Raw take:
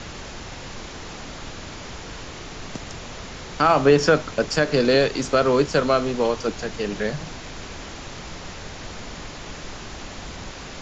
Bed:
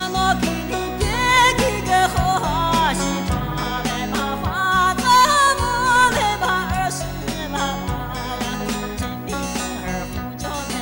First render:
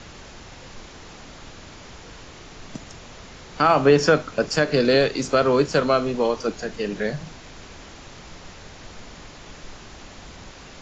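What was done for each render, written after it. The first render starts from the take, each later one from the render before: noise print and reduce 6 dB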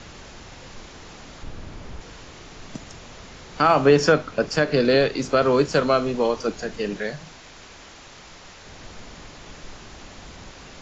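1.43–2.01 tilt -2 dB/oct; 4.12–5.42 air absorption 59 m; 6.97–8.67 low shelf 420 Hz -7.5 dB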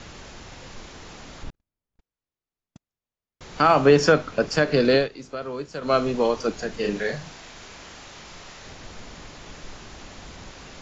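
1.5–3.41 gate -29 dBFS, range -53 dB; 4.95–5.95 dip -13.5 dB, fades 0.14 s; 6.79–8.73 doubler 40 ms -3.5 dB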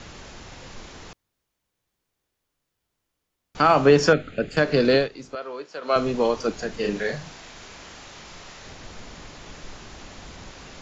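1.13–3.55 room tone; 4.13–4.57 fixed phaser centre 2400 Hz, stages 4; 5.35–5.96 BPF 420–5300 Hz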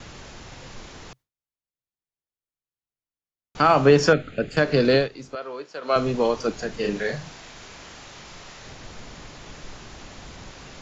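gate with hold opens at -38 dBFS; bell 130 Hz +5 dB 0.22 oct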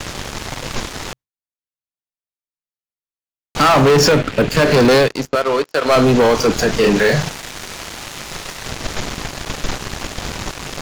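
sample leveller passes 5; limiter -8 dBFS, peak gain reduction 5 dB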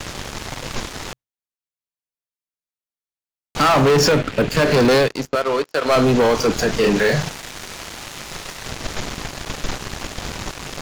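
gain -3 dB

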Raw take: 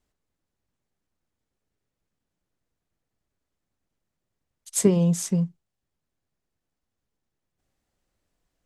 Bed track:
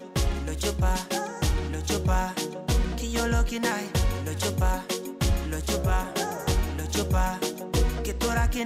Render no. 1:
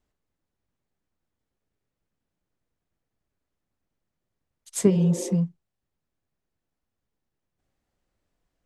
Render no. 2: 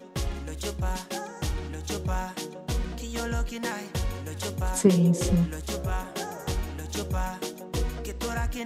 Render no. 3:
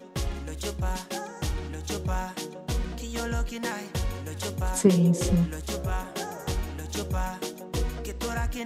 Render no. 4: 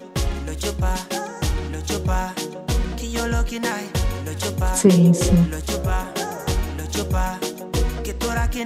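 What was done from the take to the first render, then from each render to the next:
4.93–5.31 spectral repair 220–1700 Hz after; high shelf 4200 Hz -6.5 dB
add bed track -5 dB
nothing audible
gain +7.5 dB; limiter -3 dBFS, peak gain reduction 3 dB

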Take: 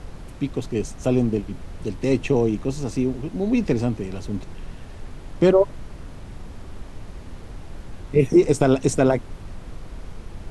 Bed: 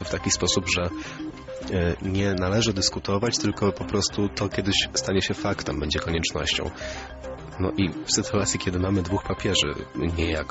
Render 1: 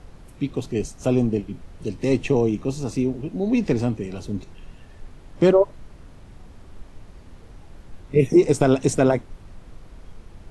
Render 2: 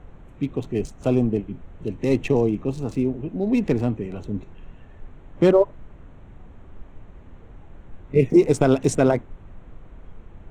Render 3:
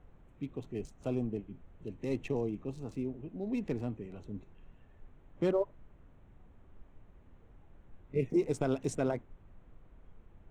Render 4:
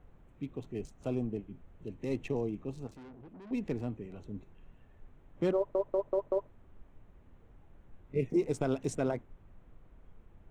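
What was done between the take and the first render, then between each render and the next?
noise print and reduce 7 dB
Wiener smoothing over 9 samples
gain -14 dB
2.87–3.51 tube stage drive 48 dB, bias 0.4; 5.56 stutter in place 0.19 s, 5 plays

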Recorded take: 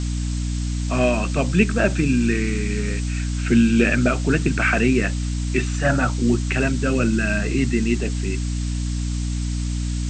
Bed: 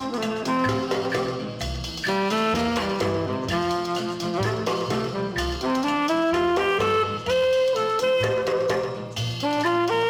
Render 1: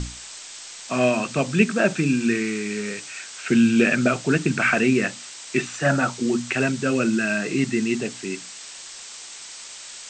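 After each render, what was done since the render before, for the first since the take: notches 60/120/180/240/300 Hz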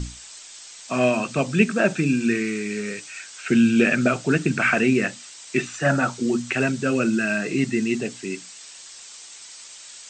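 denoiser 6 dB, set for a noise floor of -40 dBFS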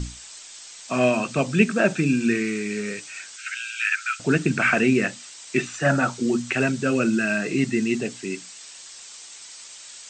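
3.36–4.2 Chebyshev high-pass 1300 Hz, order 8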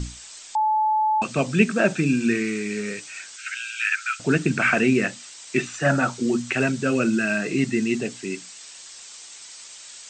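0.55–1.22 bleep 864 Hz -17.5 dBFS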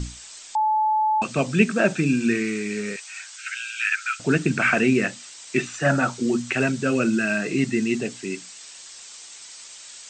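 2.96–4.1 HPF 700 Hz 24 dB/oct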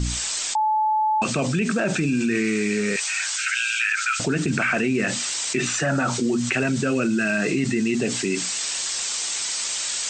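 limiter -15.5 dBFS, peak gain reduction 10.5 dB; fast leveller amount 70%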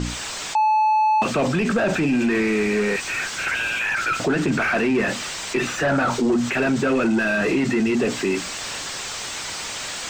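overdrive pedal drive 21 dB, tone 1000 Hz, clips at -10 dBFS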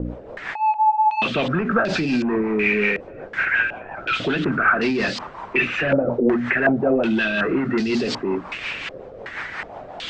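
rotary speaker horn 5.5 Hz; stepped low-pass 2.7 Hz 530–4600 Hz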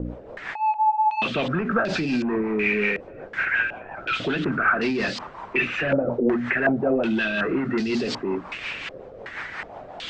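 gain -3 dB

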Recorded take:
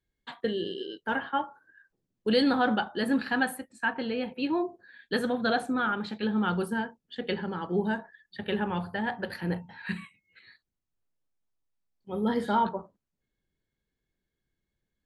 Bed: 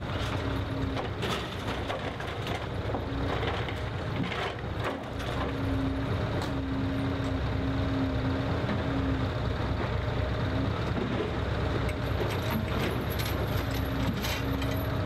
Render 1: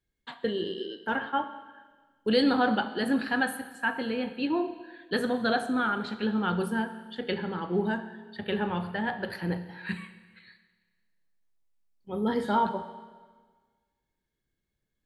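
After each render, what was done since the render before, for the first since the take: Schroeder reverb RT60 1.5 s, combs from 28 ms, DRR 11 dB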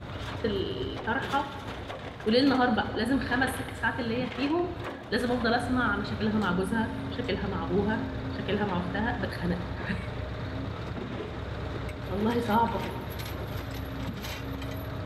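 add bed -5.5 dB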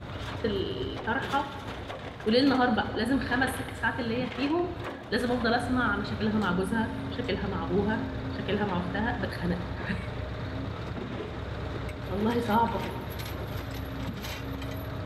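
nothing audible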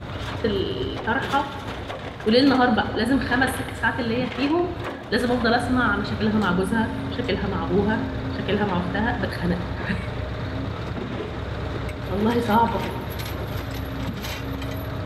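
gain +6 dB

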